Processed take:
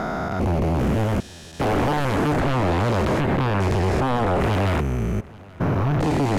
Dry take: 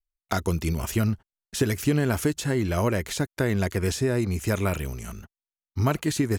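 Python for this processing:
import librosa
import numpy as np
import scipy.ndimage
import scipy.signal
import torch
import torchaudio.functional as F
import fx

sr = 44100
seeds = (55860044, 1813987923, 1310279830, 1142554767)

p1 = fx.spec_steps(x, sr, hold_ms=400)
p2 = fx.lowpass(p1, sr, hz=1100.0, slope=6)
p3 = fx.low_shelf(p2, sr, hz=71.0, db=-8.5)
p4 = fx.fold_sine(p3, sr, drive_db=13, ceiling_db=-17.0)
y = p4 + fx.echo_single(p4, sr, ms=829, db=-23.0, dry=0)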